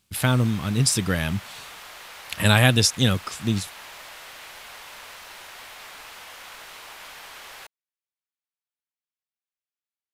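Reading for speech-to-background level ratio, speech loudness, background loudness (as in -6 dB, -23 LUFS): 19.0 dB, -21.5 LUFS, -40.5 LUFS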